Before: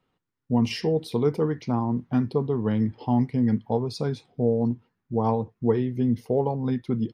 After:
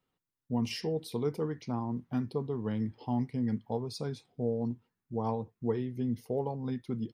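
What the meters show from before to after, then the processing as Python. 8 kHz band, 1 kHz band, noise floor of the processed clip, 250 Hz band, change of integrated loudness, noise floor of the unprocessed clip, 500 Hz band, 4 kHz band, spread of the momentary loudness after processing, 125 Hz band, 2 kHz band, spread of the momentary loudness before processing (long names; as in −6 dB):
can't be measured, −9.0 dB, below −85 dBFS, −9.0 dB, −9.0 dB, −80 dBFS, −9.0 dB, −6.0 dB, 4 LU, −9.0 dB, −8.0 dB, 4 LU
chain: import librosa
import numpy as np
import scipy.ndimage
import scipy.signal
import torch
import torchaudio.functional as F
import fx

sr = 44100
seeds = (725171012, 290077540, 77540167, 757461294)

y = fx.high_shelf(x, sr, hz=5800.0, db=10.0)
y = F.gain(torch.from_numpy(y), -9.0).numpy()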